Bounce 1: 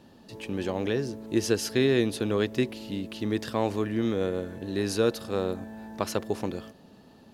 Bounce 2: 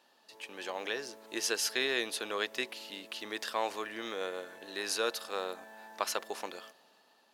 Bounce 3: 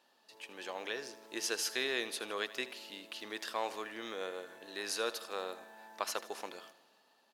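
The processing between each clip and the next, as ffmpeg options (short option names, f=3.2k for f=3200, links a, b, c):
-af "highpass=830,dynaudnorm=f=110:g=11:m=5dB,volume=-4dB"
-af "aecho=1:1:79|158|237|316|395:0.15|0.0808|0.0436|0.0236|0.0127,volume=-3.5dB"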